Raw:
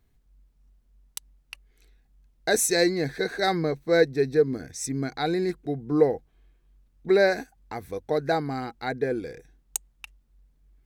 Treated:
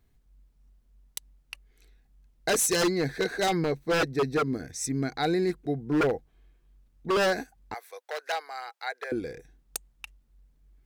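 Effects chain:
wave folding −18.5 dBFS
0:07.74–0:09.12: Bessel high-pass filter 900 Hz, order 8

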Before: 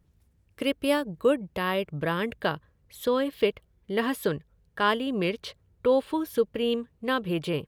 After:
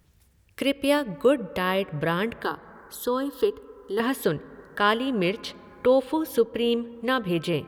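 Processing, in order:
0:02.43–0:04.00: phaser with its sweep stopped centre 620 Hz, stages 6
convolution reverb RT60 2.8 s, pre-delay 13 ms, DRR 19.5 dB
one half of a high-frequency compander encoder only
level +2.5 dB

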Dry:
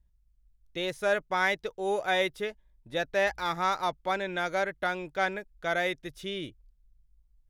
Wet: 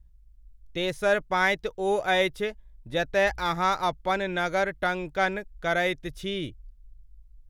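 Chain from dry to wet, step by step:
low-shelf EQ 130 Hz +10.5 dB
level +3 dB

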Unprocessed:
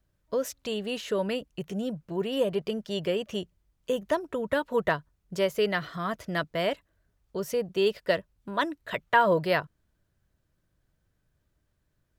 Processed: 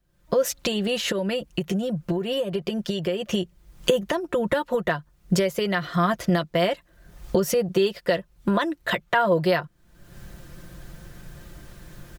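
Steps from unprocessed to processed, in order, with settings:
camcorder AGC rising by 50 dB per second
comb filter 5.7 ms, depth 56%
0:01.07–0:03.28: downward compressor, threshold −22 dBFS, peak gain reduction 7 dB

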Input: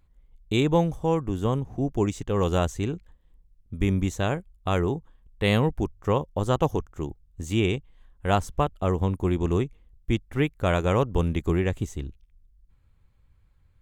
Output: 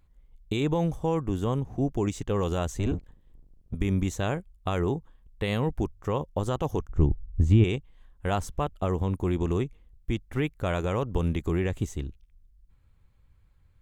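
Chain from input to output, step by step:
0:02.74–0:03.75: sub-octave generator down 1 octave, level +2 dB
brickwall limiter −16 dBFS, peak gain reduction 8 dB
0:06.89–0:07.64: RIAA equalisation playback

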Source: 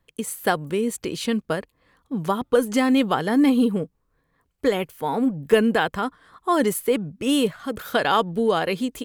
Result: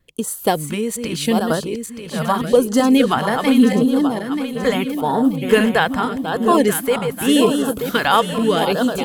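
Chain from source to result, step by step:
feedback delay that plays each chunk backwards 466 ms, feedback 66%, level −6 dB
pitch vibrato 2.1 Hz 25 cents
auto-filter notch sine 0.82 Hz 280–2,400 Hz
level +5.5 dB

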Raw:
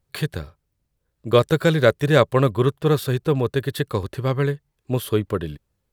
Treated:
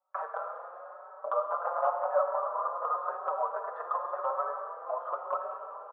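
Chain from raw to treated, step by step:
0:01.48–0:02.07: sub-harmonics by changed cycles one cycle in 3, inverted
camcorder AGC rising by 64 dB per second
Chebyshev band-pass filter 560–1,300 Hz, order 4
spectral tilt +4 dB per octave
downward compressor 2.5 to 1, threshold −35 dBFS, peak gain reduction 14.5 dB
echo with shifted repeats 190 ms, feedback 33%, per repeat −37 Hz, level −13.5 dB
dense smooth reverb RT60 3.6 s, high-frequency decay 0.75×, pre-delay 0 ms, DRR 3 dB
barber-pole flanger 4.9 ms +0.92 Hz
level +6 dB

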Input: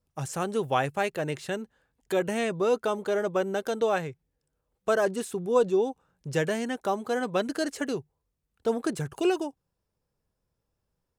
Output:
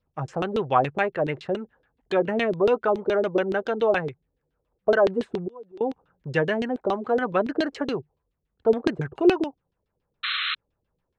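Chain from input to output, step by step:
0:05.40–0:05.81: gate with flip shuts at −27 dBFS, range −27 dB
auto-filter low-pass saw down 7.1 Hz 300–3,900 Hz
0:10.23–0:10.55: sound drawn into the spectrogram noise 1,100–4,200 Hz −29 dBFS
level +2 dB

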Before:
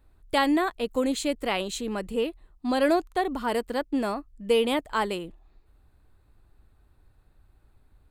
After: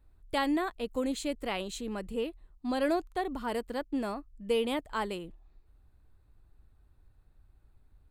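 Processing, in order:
low-shelf EQ 150 Hz +6 dB
level −7 dB

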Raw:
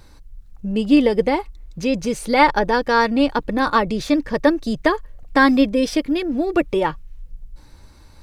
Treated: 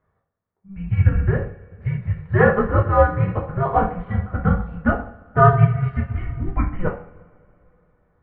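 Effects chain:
coupled-rooms reverb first 0.55 s, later 3.6 s, from −18 dB, DRR −4 dB
single-sideband voice off tune −390 Hz 250–2,300 Hz
expander for the loud parts 1.5 to 1, over −35 dBFS
level −2.5 dB

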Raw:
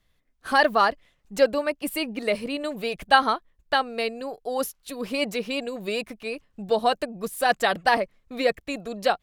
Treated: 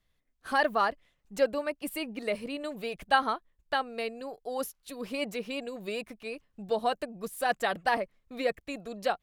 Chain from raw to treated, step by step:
dynamic equaliser 4,700 Hz, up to −4 dB, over −39 dBFS, Q 1.3
level −6.5 dB

